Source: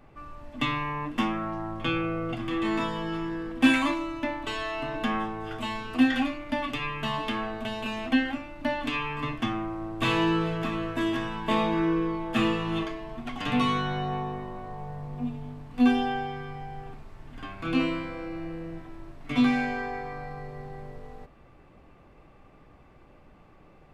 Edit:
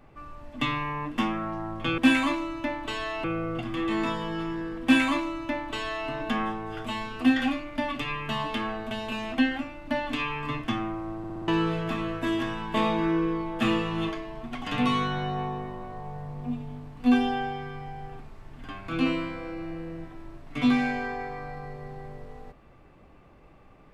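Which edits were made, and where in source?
3.57–4.83 copy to 1.98
9.92 stutter in place 0.06 s, 5 plays

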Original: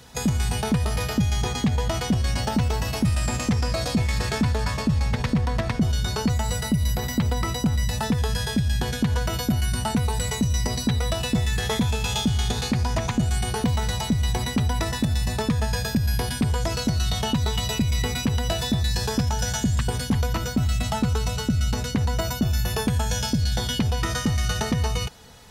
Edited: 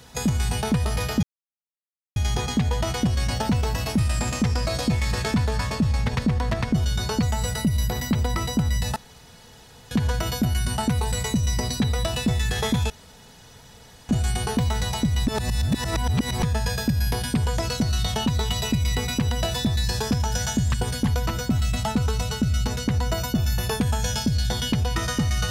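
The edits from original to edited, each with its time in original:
1.23 insert silence 0.93 s
8.03–8.98 room tone
11.97–13.16 room tone
14.34–15.5 reverse

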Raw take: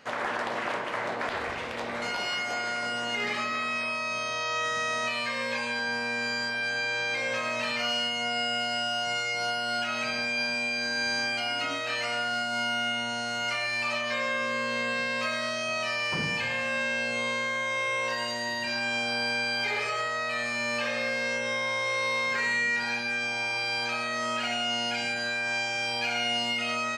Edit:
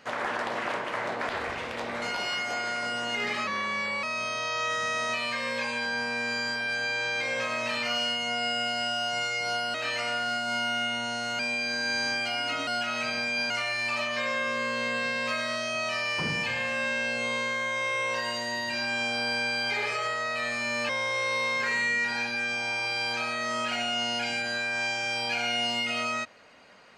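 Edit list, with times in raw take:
3.47–3.97 speed 89%
9.68–10.51 swap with 11.79–13.44
20.83–21.61 cut

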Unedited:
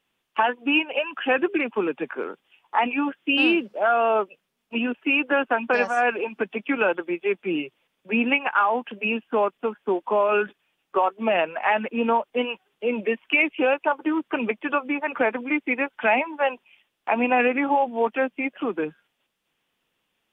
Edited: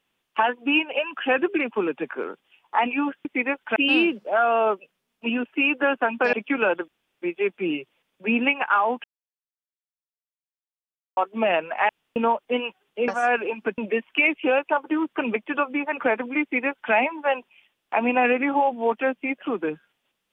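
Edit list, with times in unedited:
5.82–6.52 move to 12.93
7.07 insert room tone 0.34 s
8.89–11.02 mute
11.74–12.01 room tone
15.57–16.08 copy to 3.25

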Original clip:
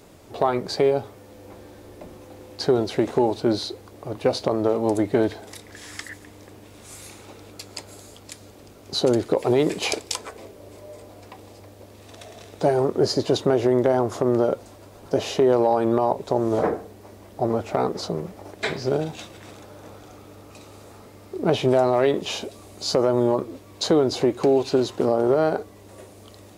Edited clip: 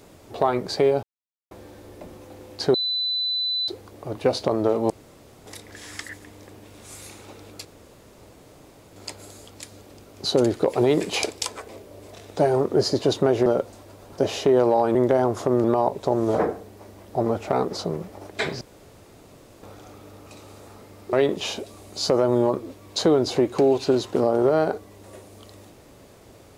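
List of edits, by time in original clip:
1.03–1.51 mute
2.74–3.68 bleep 4000 Hz -22 dBFS
4.9–5.46 room tone
7.65 insert room tone 1.31 s
10.82–12.37 cut
13.7–14.39 move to 15.88
18.85–19.87 room tone
21.37–21.98 cut

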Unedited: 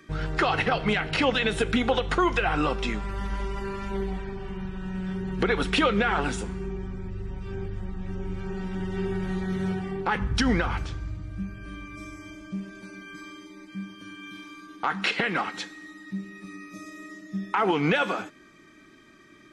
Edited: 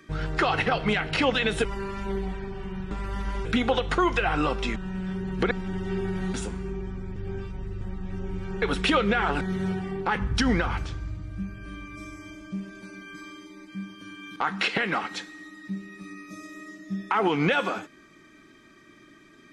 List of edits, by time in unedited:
1.65–2.96 swap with 3.5–4.76
5.51–6.3 swap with 8.58–9.41
7.12–7.77 reverse
14.36–14.79 cut

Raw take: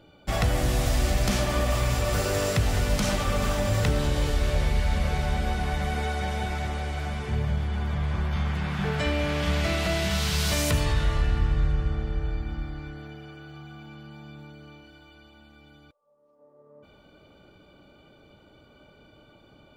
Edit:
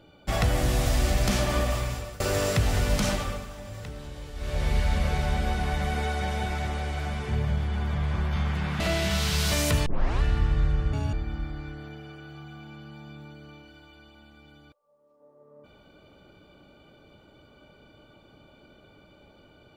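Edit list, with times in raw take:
1.57–2.2 fade out, to -23.5 dB
3.06–4.74 dip -15 dB, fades 0.40 s
8.8–9.8 cut
10.86 tape start 0.35 s
11.93–12.32 speed 193%

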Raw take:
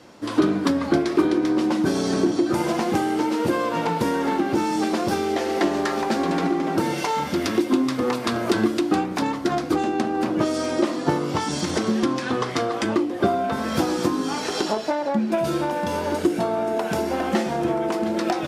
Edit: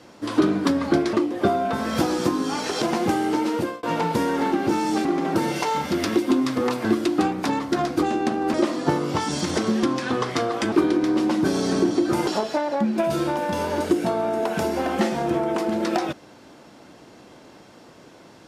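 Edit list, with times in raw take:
1.13–2.68 swap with 12.92–14.61
3.26–3.69 fade out equal-power
4.91–6.47 cut
8.27–8.58 cut
10.27–10.74 cut

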